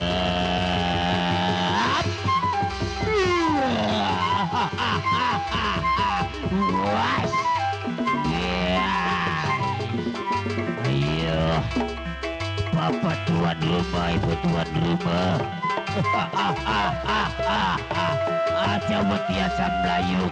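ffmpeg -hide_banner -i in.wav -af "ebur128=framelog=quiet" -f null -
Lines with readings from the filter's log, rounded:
Integrated loudness:
  I:         -23.5 LUFS
  Threshold: -33.5 LUFS
Loudness range:
  LRA:         2.0 LU
  Threshold: -43.6 LUFS
  LRA low:   -24.6 LUFS
  LRA high:  -22.6 LUFS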